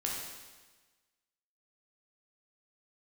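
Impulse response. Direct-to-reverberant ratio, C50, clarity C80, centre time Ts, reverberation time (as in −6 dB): −3.0 dB, 0.5 dB, 3.0 dB, 73 ms, 1.3 s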